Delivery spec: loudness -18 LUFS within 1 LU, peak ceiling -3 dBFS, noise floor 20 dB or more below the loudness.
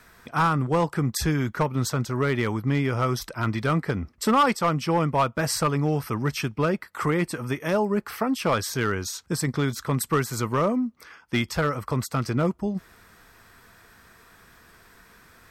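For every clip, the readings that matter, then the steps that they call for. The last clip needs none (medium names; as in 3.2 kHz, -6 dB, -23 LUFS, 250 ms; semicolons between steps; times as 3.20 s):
clipped samples 0.5%; clipping level -14.5 dBFS; loudness -25.5 LUFS; peak level -14.5 dBFS; loudness target -18.0 LUFS
-> clip repair -14.5 dBFS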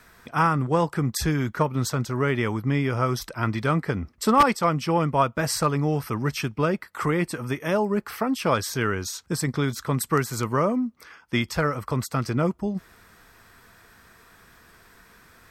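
clipped samples 0.0%; loudness -25.0 LUFS; peak level -5.5 dBFS; loudness target -18.0 LUFS
-> trim +7 dB; peak limiter -3 dBFS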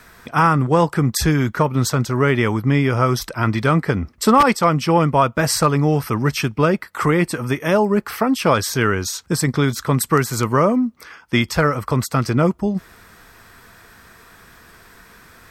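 loudness -18.5 LUFS; peak level -3.0 dBFS; noise floor -50 dBFS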